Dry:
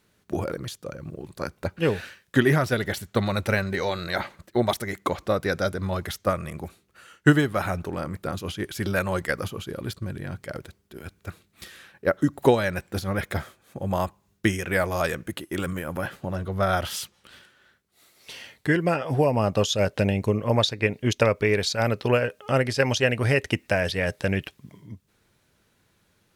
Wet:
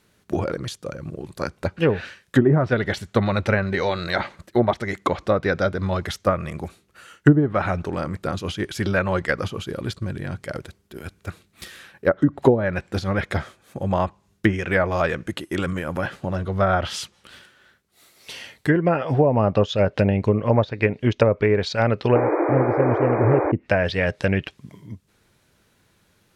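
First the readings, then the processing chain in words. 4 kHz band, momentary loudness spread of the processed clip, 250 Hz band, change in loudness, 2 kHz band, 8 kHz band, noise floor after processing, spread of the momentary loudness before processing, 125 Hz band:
−2.0 dB, 16 LU, +4.0 dB, +3.5 dB, +1.0 dB, −5.0 dB, −63 dBFS, 16 LU, +4.0 dB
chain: sound drawn into the spectrogram noise, 0:22.15–0:23.52, 290–2,500 Hz −16 dBFS
treble cut that deepens with the level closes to 480 Hz, closed at −14 dBFS
level +4 dB

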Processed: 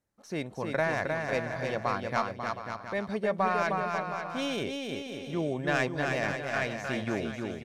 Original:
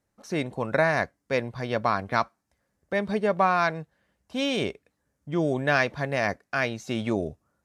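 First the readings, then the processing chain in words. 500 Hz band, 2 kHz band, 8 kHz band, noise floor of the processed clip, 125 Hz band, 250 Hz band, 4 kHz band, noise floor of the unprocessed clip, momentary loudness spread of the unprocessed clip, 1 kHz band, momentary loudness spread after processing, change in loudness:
−4.0 dB, −4.0 dB, −1.5 dB, −48 dBFS, −4.0 dB, −4.0 dB, −4.0 dB, −79 dBFS, 8 LU, −4.0 dB, 7 LU, −4.5 dB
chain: stylus tracing distortion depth 0.037 ms
bouncing-ball delay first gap 310 ms, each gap 0.75×, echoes 5
level −6 dB

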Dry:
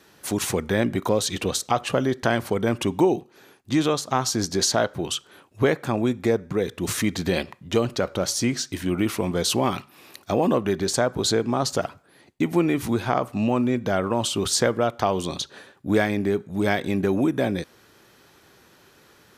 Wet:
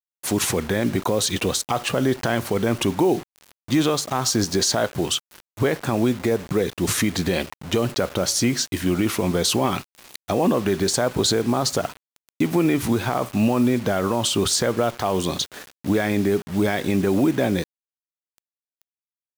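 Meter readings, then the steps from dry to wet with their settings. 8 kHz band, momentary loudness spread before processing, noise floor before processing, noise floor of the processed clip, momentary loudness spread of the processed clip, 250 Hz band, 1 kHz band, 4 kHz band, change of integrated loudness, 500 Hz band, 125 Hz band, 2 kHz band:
+3.5 dB, 6 LU, −56 dBFS, below −85 dBFS, 6 LU, +2.5 dB, +0.5 dB, +3.5 dB, +2.0 dB, +1.0 dB, +2.5 dB, +1.0 dB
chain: brickwall limiter −15 dBFS, peak gain reduction 8.5 dB
bit reduction 7 bits
level +4.5 dB

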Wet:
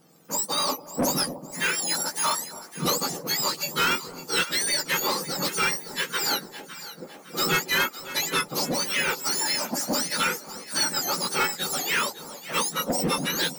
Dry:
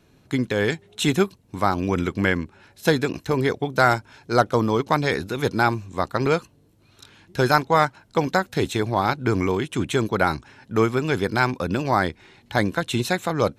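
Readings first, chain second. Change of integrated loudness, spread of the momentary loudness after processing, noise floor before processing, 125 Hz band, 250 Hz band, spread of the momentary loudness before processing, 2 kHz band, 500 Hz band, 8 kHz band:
−2.5 dB, 6 LU, −58 dBFS, −13.5 dB, −9.5 dB, 6 LU, −1.5 dB, −10.0 dB, +13.0 dB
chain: frequency axis turned over on the octave scale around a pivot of 1,400 Hz
soft clipping −21.5 dBFS, distortion −11 dB
delay that swaps between a low-pass and a high-pass 279 ms, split 840 Hz, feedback 66%, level −10.5 dB
level +3 dB

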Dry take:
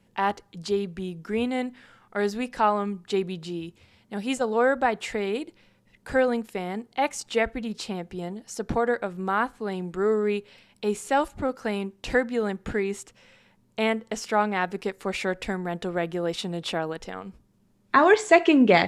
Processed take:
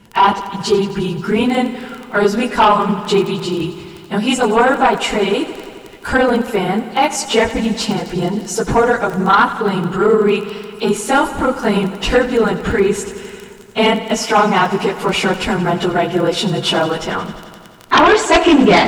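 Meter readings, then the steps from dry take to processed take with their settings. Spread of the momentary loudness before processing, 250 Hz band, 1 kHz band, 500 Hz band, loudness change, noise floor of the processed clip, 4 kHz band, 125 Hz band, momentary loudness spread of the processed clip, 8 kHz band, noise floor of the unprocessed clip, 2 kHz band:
13 LU, +11.0 dB, +12.0 dB, +10.0 dB, +11.0 dB, −37 dBFS, +15.5 dB, +13.5 dB, 10 LU, +13.5 dB, −63 dBFS, +10.0 dB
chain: random phases in long frames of 50 ms
notch filter 560 Hz, Q 12
dynamic equaliser 1,800 Hz, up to −5 dB, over −42 dBFS, Q 2.8
in parallel at −3 dB: downward compressor, threshold −32 dBFS, peak gain reduction 18.5 dB
on the sum: surface crackle 15 per second −31 dBFS
hollow resonant body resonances 1,000/1,400/2,900 Hz, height 7 dB, ringing for 20 ms
sine wavefolder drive 10 dB, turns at −1.5 dBFS
feedback echo at a low word length 88 ms, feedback 80%, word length 7 bits, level −15 dB
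level −3.5 dB

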